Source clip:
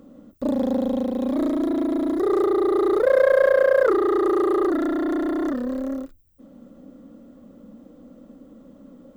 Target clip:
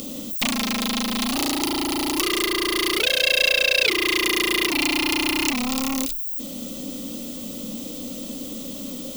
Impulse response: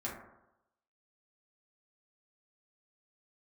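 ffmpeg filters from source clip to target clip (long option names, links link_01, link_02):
-af "acompressor=threshold=-28dB:ratio=6,aeval=exprs='0.0841*sin(PI/2*2.82*val(0)/0.0841)':channel_layout=same,aexciter=amount=15.2:drive=3.5:freq=2400,volume=-1.5dB"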